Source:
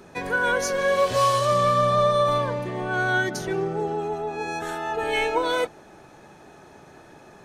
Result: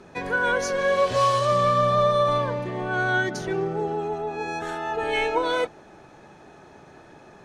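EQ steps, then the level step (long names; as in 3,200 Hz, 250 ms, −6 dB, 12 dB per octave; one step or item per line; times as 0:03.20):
high-frequency loss of the air 50 metres
0.0 dB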